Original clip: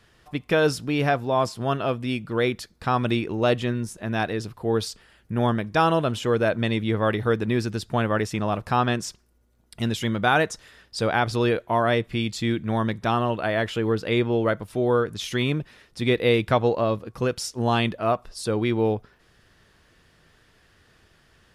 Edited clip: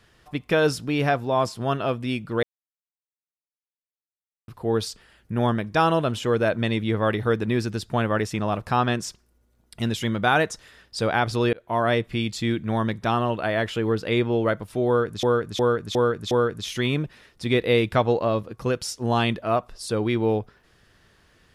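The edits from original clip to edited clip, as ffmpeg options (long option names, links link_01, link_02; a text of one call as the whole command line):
ffmpeg -i in.wav -filter_complex "[0:a]asplit=8[link_01][link_02][link_03][link_04][link_05][link_06][link_07][link_08];[link_01]atrim=end=2.43,asetpts=PTS-STARTPTS,afade=type=out:start_time=2.426:duration=0.004:curve=hsin[link_09];[link_02]atrim=start=2.43:end=4.48,asetpts=PTS-STARTPTS,volume=0[link_10];[link_03]atrim=start=4.48:end=11.53,asetpts=PTS-STARTPTS,afade=type=in:duration=0.004:curve=hsin,afade=type=out:start_time=7.046:duration=0.004:curve=hsin[link_11];[link_04]atrim=start=11.53:end=15.232,asetpts=PTS-STARTPTS,afade=type=in:duration=0.38:curve=qsin[link_12];[link_05]atrim=start=14.868:end=15.232[link_13];[link_06]atrim=start=14.868:end=15.232[link_14];[link_07]atrim=start=14.868:end=15.232[link_15];[link_08]atrim=start=14.868[link_16];[link_09][link_10][link_11][link_12]concat=n=4:v=0:a=1[link_17];[link_17][link_13]acrossfade=duration=0.004:curve1=hsin:curve2=hsin[link_18];[link_18][link_14]acrossfade=duration=0.004:curve1=hsin:curve2=hsin[link_19];[link_19][link_15]acrossfade=duration=0.004:curve1=hsin:curve2=hsin[link_20];[link_20][link_16]acrossfade=duration=0.004:curve1=hsin:curve2=hsin" out.wav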